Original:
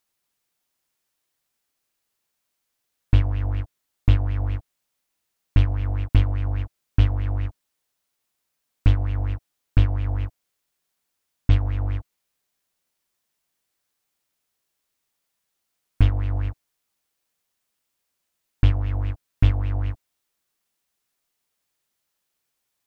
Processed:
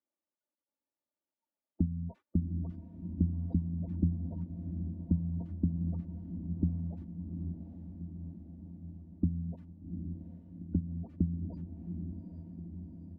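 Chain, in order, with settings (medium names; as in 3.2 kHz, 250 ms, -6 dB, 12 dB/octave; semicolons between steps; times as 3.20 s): one-bit delta coder 64 kbps, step -25.5 dBFS; spectral noise reduction 24 dB; spectral gate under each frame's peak -15 dB strong; gate -49 dBFS, range -25 dB; high-pass 83 Hz 12 dB/octave; level-controlled noise filter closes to 410 Hz, open at -19 dBFS; comb 5.9 ms, depth 93%; on a send: echo that smears into a reverb 1377 ms, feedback 65%, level -7 dB; on the sum: speed mistake 45 rpm record played at 78 rpm; trim -5 dB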